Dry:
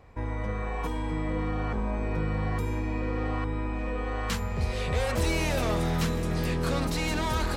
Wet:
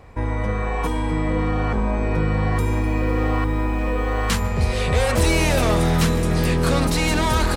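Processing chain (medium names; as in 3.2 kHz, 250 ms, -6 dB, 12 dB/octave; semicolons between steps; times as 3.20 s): peaking EQ 9.3 kHz +4.5 dB 0.4 oct; delay 146 ms -24 dB; 2.31–4.47 s: bit-crushed delay 253 ms, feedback 55%, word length 8-bit, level -15 dB; trim +8.5 dB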